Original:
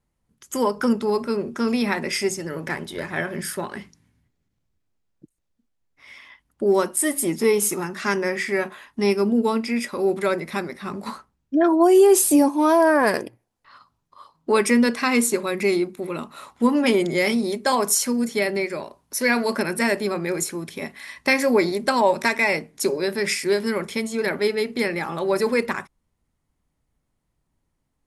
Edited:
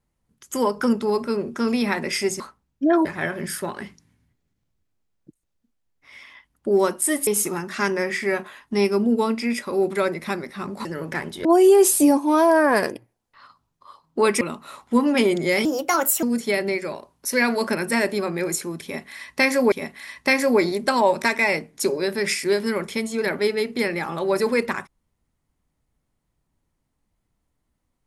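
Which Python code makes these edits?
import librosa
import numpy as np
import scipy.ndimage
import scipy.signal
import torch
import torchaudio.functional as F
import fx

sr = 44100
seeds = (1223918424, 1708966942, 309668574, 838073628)

y = fx.edit(x, sr, fx.swap(start_s=2.4, length_s=0.6, other_s=11.11, other_length_s=0.65),
    fx.cut(start_s=7.22, length_s=0.31),
    fx.cut(start_s=14.72, length_s=1.38),
    fx.speed_span(start_s=17.34, length_s=0.77, speed=1.33),
    fx.repeat(start_s=20.72, length_s=0.88, count=2), tone=tone)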